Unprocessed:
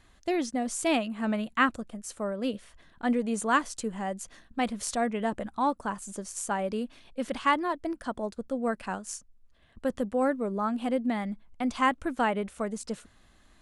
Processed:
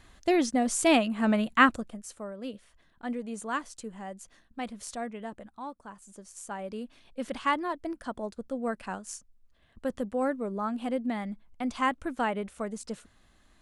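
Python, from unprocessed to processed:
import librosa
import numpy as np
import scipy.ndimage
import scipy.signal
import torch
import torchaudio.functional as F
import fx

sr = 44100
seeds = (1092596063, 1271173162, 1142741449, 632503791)

y = fx.gain(x, sr, db=fx.line((1.69, 4.0), (2.27, -7.5), (4.99, -7.5), (5.76, -14.0), (7.22, -2.5)))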